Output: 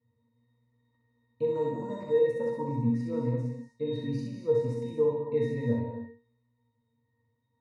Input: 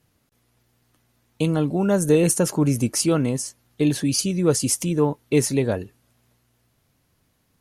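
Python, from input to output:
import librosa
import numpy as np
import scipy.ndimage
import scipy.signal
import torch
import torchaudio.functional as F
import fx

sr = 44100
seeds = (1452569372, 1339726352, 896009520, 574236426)

y = fx.high_shelf(x, sr, hz=3900.0, db=-6.5)
y = fx.resample_bad(y, sr, factor=6, down='none', up='hold', at=(1.48, 2.13))
y = fx.octave_resonator(y, sr, note='A#', decay_s=0.33)
y = fx.rider(y, sr, range_db=4, speed_s=0.5)
y = fx.low_shelf(y, sr, hz=400.0, db=-8.0)
y = fx.notch(y, sr, hz=3500.0, q=11.0)
y = fx.room_early_taps(y, sr, ms=(42, 64), db=(-8.0, -3.0))
y = fx.rev_gated(y, sr, seeds[0], gate_ms=280, shape='flat', drr_db=3.5)
y = y * librosa.db_to_amplitude(7.5)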